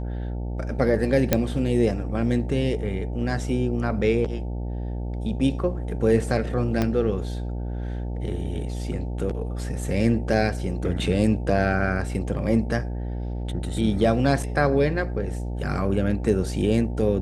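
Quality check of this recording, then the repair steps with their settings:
buzz 60 Hz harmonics 15 -29 dBFS
1.33 s: pop -3 dBFS
6.82 s: pop -10 dBFS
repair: de-click; de-hum 60 Hz, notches 15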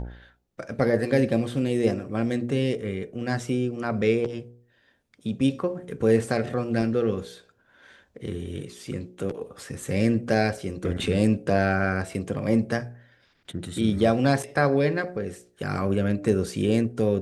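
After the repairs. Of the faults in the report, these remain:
6.82 s: pop

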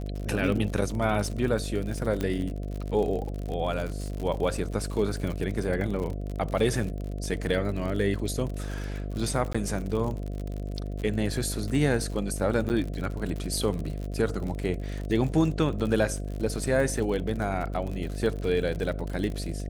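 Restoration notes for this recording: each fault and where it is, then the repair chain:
buzz 50 Hz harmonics 14 -33 dBFS
crackle 56 per s -32 dBFS
2.21 s: pop -16 dBFS
9.53–9.54 s: dropout 15 ms
12.69–12.70 s: dropout 9.4 ms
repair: de-click; de-hum 50 Hz, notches 14; interpolate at 9.53 s, 15 ms; interpolate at 12.69 s, 9.4 ms

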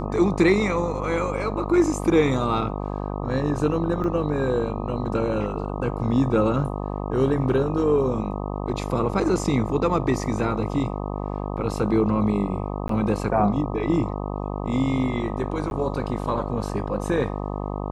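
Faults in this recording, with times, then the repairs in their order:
buzz 50 Hz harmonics 25 -29 dBFS
4.04 s: dropout 2.3 ms
12.88–12.89 s: dropout 13 ms
15.70–15.71 s: dropout 11 ms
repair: de-hum 50 Hz, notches 25; interpolate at 4.04 s, 2.3 ms; interpolate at 12.88 s, 13 ms; interpolate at 15.70 s, 11 ms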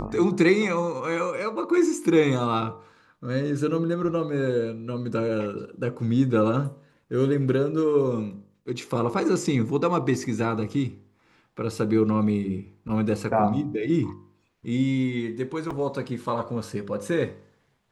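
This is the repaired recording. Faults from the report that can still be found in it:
nothing left

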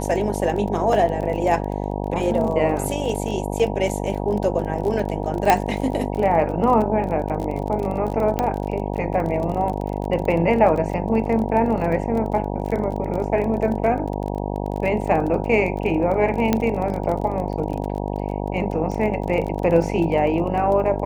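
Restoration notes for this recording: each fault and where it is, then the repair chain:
buzz 50 Hz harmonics 19 -26 dBFS
crackle 26 per s -27 dBFS
5.50 s: pop -2 dBFS
8.39 s: pop -8 dBFS
16.53 s: pop -5 dBFS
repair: de-click; de-hum 50 Hz, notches 19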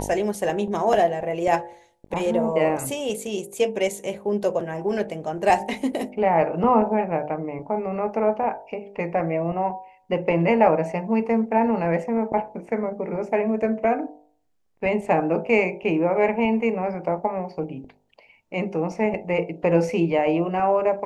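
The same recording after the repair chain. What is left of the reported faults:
nothing left

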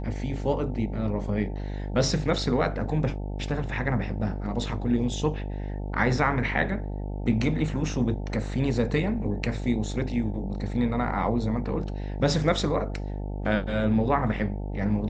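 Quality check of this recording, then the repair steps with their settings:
buzz 50 Hz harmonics 18 -32 dBFS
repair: de-hum 50 Hz, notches 18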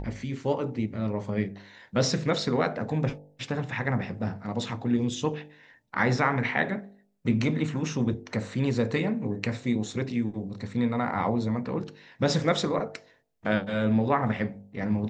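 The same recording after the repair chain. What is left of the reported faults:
nothing left

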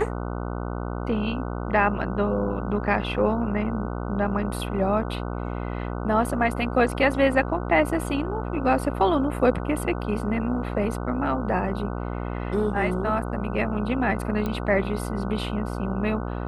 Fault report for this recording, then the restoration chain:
buzz 60 Hz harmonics 25 -30 dBFS
14.46 s: pop -16 dBFS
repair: de-click; de-hum 60 Hz, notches 25

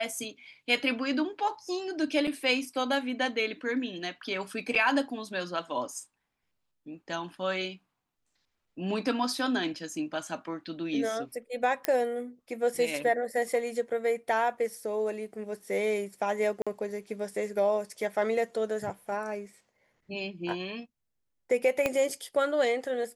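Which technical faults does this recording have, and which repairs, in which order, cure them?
2.27–2.28 s: dropout 5.6 ms
4.75–4.76 s: dropout 6.2 ms
11.85 s: pop -11 dBFS
16.62–16.67 s: dropout 46 ms
21.86 s: pop -13 dBFS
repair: de-click; interpolate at 2.27 s, 5.6 ms; interpolate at 4.75 s, 6.2 ms; interpolate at 16.62 s, 46 ms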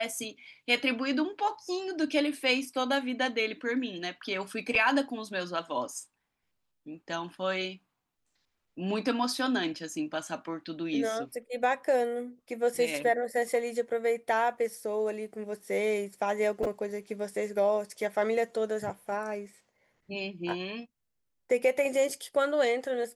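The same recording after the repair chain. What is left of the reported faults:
21.86 s: pop

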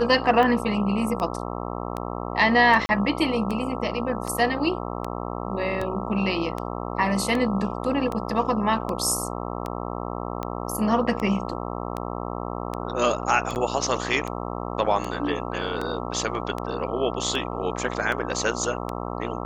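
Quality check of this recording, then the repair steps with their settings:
buzz 60 Hz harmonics 22 -31 dBFS
tick 78 rpm -16 dBFS
2.86–2.89 s: dropout 30 ms
13.55–13.56 s: dropout 9.3 ms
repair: de-click; de-hum 60 Hz, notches 22; interpolate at 2.86 s, 30 ms; interpolate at 13.55 s, 9.3 ms

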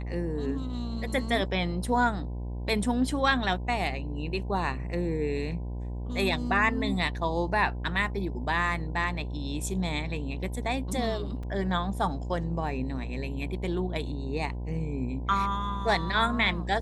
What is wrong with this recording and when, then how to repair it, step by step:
buzz 60 Hz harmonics 17 -34 dBFS
11.43 s: dropout 4.2 ms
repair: de-hum 60 Hz, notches 17; interpolate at 11.43 s, 4.2 ms

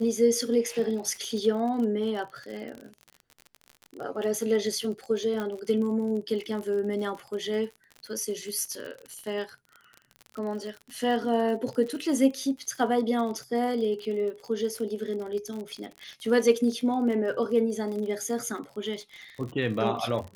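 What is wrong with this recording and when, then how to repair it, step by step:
crackle 42 per s -34 dBFS
5.40 s: pop -20 dBFS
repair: de-click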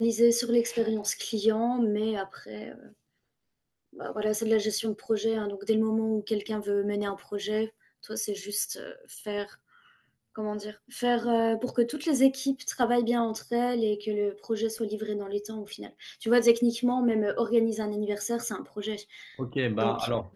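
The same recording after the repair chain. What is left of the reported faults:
5.40 s: pop

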